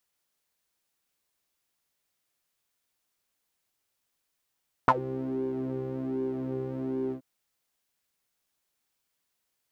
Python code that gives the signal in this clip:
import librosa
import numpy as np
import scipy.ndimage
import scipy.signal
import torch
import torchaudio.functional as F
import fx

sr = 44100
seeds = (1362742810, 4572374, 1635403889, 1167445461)

y = fx.sub_patch_pwm(sr, seeds[0], note=48, wave2='saw', interval_st=0, detune_cents=16, level2_db=-9.0, sub_db=-15.0, noise_db=-30.0, kind='bandpass', cutoff_hz=320.0, q=8.3, env_oct=2.0, env_decay_s=0.1, env_sustain_pct=5, attack_ms=1.4, decay_s=0.05, sustain_db=-19, release_s=0.09, note_s=2.24, lfo_hz=1.3, width_pct=31, width_swing_pct=11)